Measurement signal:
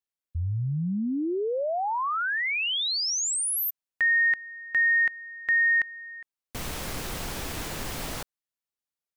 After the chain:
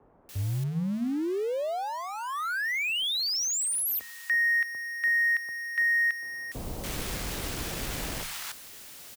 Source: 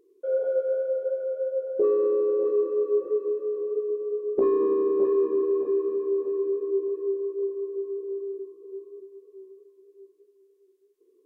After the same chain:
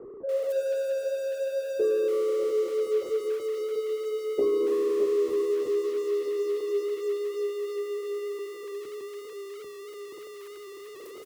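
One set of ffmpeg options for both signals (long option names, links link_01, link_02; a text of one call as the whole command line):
ffmpeg -i in.wav -filter_complex "[0:a]aeval=exprs='val(0)+0.5*0.0237*sgn(val(0))':channel_layout=same,bandreject=frequency=69.17:width_type=h:width=4,bandreject=frequency=138.34:width_type=h:width=4,bandreject=frequency=207.51:width_type=h:width=4,asplit=2[link_01][link_02];[link_02]acrusher=bits=5:mix=0:aa=0.5,volume=-10.5dB[link_03];[link_01][link_03]amix=inputs=2:normalize=0,afreqshift=15,acrossover=split=970[link_04][link_05];[link_05]adelay=290[link_06];[link_04][link_06]amix=inputs=2:normalize=0,volume=-5.5dB" out.wav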